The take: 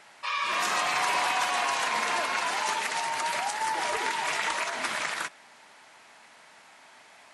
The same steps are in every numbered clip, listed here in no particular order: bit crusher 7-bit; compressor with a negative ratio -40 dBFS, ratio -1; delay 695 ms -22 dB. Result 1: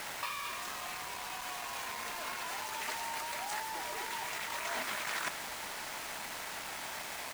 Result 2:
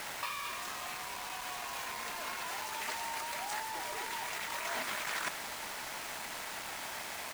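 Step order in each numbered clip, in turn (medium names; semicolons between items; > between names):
compressor with a negative ratio > bit crusher > delay; compressor with a negative ratio > delay > bit crusher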